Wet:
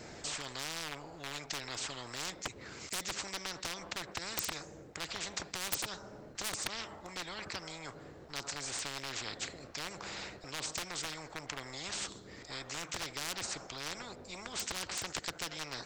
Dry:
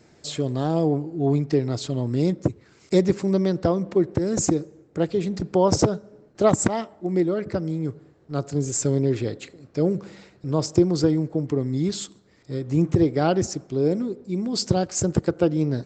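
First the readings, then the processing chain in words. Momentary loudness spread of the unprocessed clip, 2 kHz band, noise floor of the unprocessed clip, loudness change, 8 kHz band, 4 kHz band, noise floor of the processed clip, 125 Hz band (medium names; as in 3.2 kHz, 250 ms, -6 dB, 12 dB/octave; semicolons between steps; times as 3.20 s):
10 LU, 0.0 dB, -56 dBFS, -16.0 dB, -7.5 dB, -2.0 dB, -53 dBFS, -27.0 dB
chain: wavefolder -14.5 dBFS; spectrum-flattening compressor 10:1; trim +1 dB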